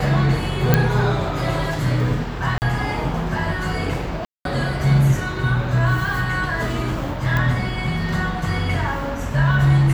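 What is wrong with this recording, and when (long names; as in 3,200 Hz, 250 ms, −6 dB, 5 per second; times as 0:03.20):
0:00.74: click −1 dBFS
0:02.58–0:02.62: drop-out 39 ms
0:04.25–0:04.45: drop-out 202 ms
0:07.37: click −10 dBFS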